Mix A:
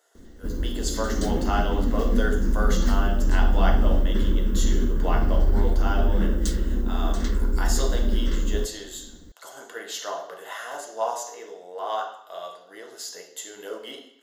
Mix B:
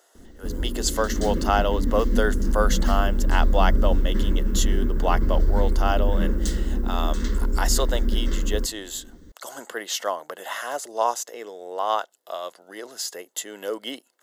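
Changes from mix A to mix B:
speech +7.5 dB
reverb: off

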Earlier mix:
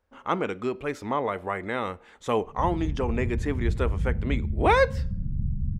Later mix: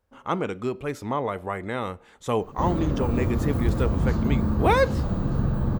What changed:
background: remove inverse Chebyshev low-pass filter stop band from 990 Hz, stop band 80 dB
master: add graphic EQ with 10 bands 125 Hz +6 dB, 2,000 Hz −3 dB, 16,000 Hz +9 dB

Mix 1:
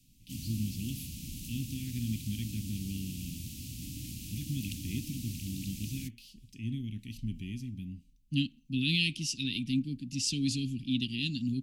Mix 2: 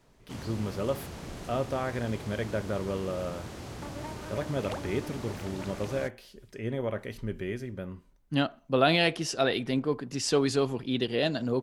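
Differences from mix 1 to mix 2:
background: add high-frequency loss of the air 57 metres
master: remove Chebyshev band-stop filter 270–2,600 Hz, order 4

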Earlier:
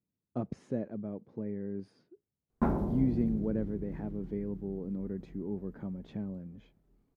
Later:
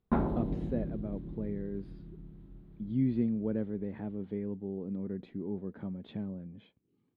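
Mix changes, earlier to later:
background: entry −2.50 s
master: add high shelf with overshoot 4,600 Hz −7.5 dB, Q 3

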